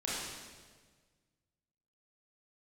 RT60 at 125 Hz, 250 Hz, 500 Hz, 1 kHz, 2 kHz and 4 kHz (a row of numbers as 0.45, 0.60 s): 2.2, 1.7, 1.7, 1.4, 1.4, 1.3 s